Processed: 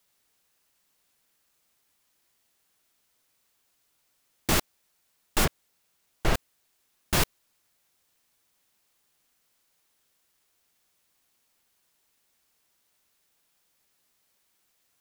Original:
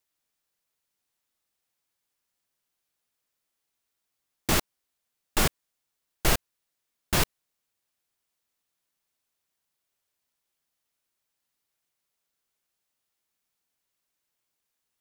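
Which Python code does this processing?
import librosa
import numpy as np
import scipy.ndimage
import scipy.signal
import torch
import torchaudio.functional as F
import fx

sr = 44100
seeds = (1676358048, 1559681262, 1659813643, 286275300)

y = fx.lowpass(x, sr, hz=2100.0, slope=6, at=(5.44, 6.34), fade=0.02)
y = fx.quant_dither(y, sr, seeds[0], bits=12, dither='triangular')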